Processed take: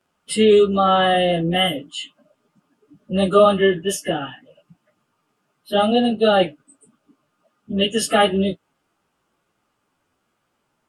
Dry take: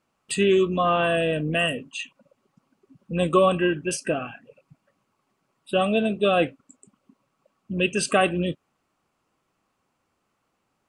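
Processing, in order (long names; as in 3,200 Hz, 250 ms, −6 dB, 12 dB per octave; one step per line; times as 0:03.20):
phase-vocoder pitch shift without resampling +1.5 semitones
level +6.5 dB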